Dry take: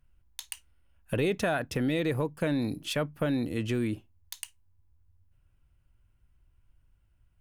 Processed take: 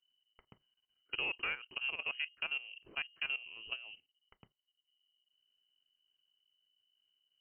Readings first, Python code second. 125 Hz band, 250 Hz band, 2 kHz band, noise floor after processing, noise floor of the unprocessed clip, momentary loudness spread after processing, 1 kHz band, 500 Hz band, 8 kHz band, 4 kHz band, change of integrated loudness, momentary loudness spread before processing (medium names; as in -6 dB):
under -30 dB, -33.0 dB, -1.0 dB, under -85 dBFS, -67 dBFS, 7 LU, -12.0 dB, -24.5 dB, under -35 dB, -0.5 dB, -7.5 dB, 15 LU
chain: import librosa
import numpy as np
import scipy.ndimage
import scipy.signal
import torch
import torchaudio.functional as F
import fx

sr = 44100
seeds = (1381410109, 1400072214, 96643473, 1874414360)

y = fx.cheby_harmonics(x, sr, harmonics=(2, 3, 6, 8), levels_db=(-28, -18, -29, -37), full_scale_db=-16.0)
y = fx.level_steps(y, sr, step_db=15)
y = fx.freq_invert(y, sr, carrier_hz=3000)
y = y * 10.0 ** (-5.5 / 20.0)